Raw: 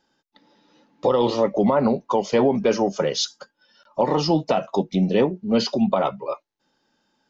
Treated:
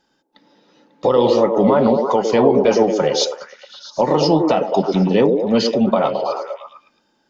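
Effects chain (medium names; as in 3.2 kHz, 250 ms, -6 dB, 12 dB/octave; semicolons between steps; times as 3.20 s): Chebyshev shaper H 6 -45 dB, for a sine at -6 dBFS; repeats whose band climbs or falls 109 ms, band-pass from 380 Hz, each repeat 0.7 oct, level -1 dB; trim +3.5 dB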